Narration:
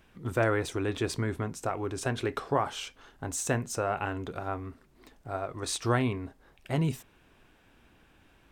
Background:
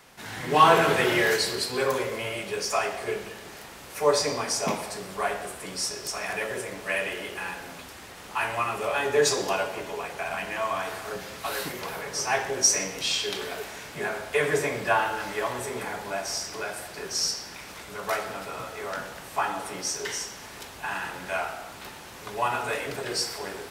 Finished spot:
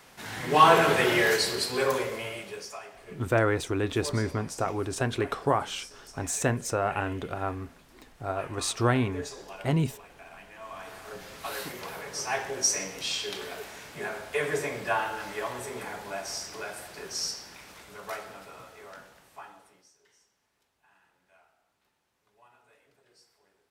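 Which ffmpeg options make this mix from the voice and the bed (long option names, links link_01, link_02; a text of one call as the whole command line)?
ffmpeg -i stem1.wav -i stem2.wav -filter_complex "[0:a]adelay=2950,volume=2.5dB[link_01];[1:a]volume=12dB,afade=type=out:start_time=1.92:duration=0.87:silence=0.149624,afade=type=in:start_time=10.58:duration=0.88:silence=0.237137,afade=type=out:start_time=16.97:duration=2.93:silence=0.0354813[link_02];[link_01][link_02]amix=inputs=2:normalize=0" out.wav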